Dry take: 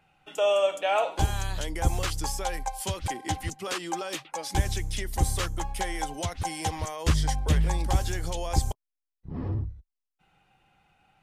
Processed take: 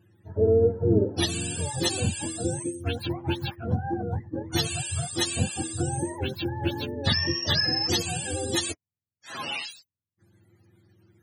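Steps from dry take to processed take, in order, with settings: spectrum inverted on a logarithmic axis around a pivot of 520 Hz; trim +3.5 dB

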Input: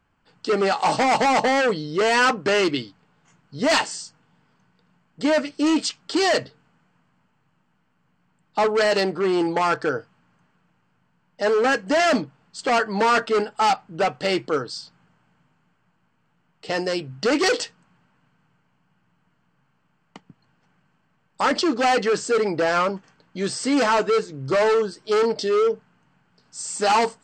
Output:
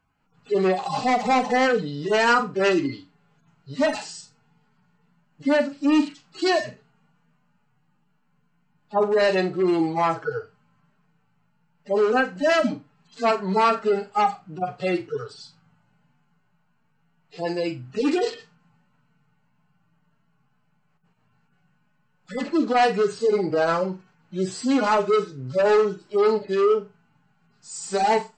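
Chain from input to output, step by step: harmonic-percussive separation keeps harmonic; flutter echo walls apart 7 m, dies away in 0.22 s; tape speed -4%

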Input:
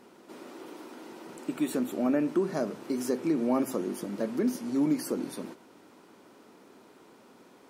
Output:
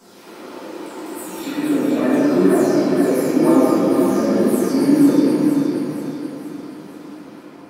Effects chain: delay that grows with frequency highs early, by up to 517 ms; on a send: thinning echo 473 ms, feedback 53%, high-pass 1.1 kHz, level -4.5 dB; on the sum: simulated room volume 190 m³, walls hard, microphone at 1.6 m; trim +3 dB

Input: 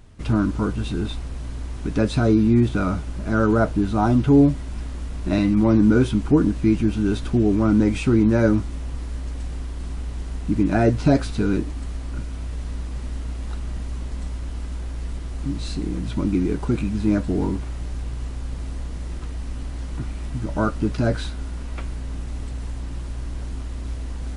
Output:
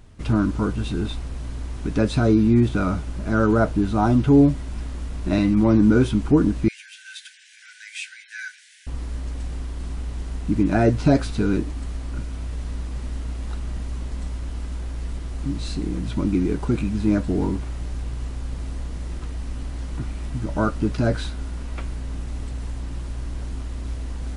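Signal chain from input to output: 6.68–8.87 s: Chebyshev high-pass 1.5 kHz, order 10

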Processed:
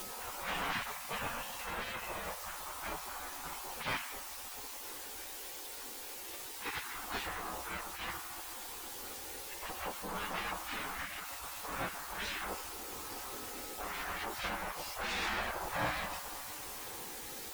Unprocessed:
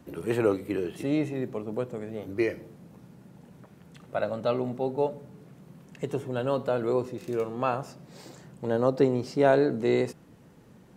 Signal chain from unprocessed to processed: RIAA curve playback; whistle 640 Hz -36 dBFS; dynamic bell 2.9 kHz, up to +7 dB, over -51 dBFS, Q 1.5; in parallel at -10 dB: word length cut 6-bit, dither triangular; on the sum: valve stage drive 24 dB, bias 0.55; plain phase-vocoder stretch 1.6×; on a send: repeats whose band climbs or falls 259 ms, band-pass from 280 Hz, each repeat 0.7 oct, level -9 dB; on the sum: spring tank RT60 1.5 s, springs 44 ms, chirp 55 ms, DRR 14.5 dB; spectral gate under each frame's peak -20 dB weak; trim +5.5 dB

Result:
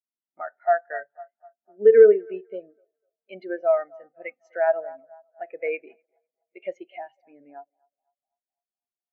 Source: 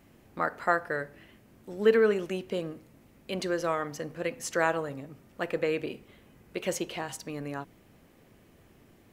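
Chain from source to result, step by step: cabinet simulation 300–5700 Hz, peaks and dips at 320 Hz -5 dB, 490 Hz -8 dB, 690 Hz +5 dB, 1.1 kHz -7 dB, 2.2 kHz +6 dB, 5.2 kHz -4 dB; band-stop 1.1 kHz, Q 27; band-passed feedback delay 250 ms, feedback 71%, band-pass 900 Hz, level -11 dB; on a send at -21.5 dB: reverberation RT60 0.70 s, pre-delay 6 ms; on the sum: loudness maximiser +19 dB; spectral contrast expander 2.5:1; trim -3 dB

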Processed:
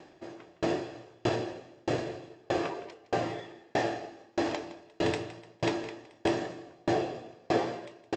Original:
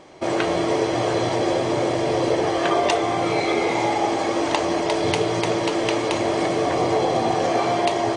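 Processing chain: formant shift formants -3 st; on a send: delay 164 ms -5 dB; on the sum: sawtooth tremolo in dB decaying 1.6 Hz, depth 39 dB; trim -3 dB

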